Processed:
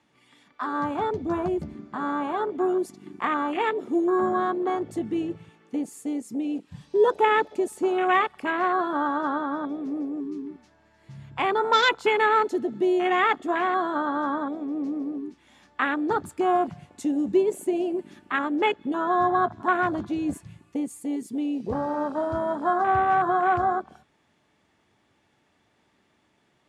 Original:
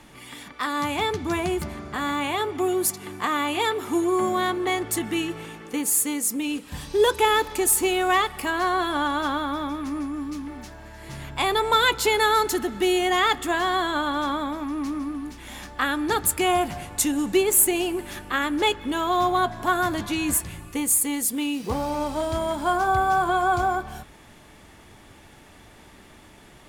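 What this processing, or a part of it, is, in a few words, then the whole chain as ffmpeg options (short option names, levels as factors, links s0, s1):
over-cleaned archive recording: -af "highpass=110,lowpass=6800,afwtdn=0.0562"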